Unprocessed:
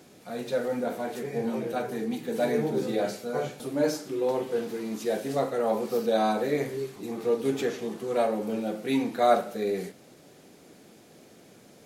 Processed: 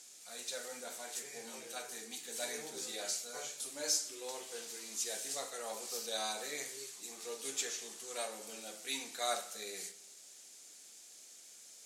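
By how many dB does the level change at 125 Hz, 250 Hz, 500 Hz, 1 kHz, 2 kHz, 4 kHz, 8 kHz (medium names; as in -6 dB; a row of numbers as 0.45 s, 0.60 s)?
under -25 dB, -25.0 dB, -19.0 dB, -15.0 dB, -7.5 dB, +1.5 dB, +8.5 dB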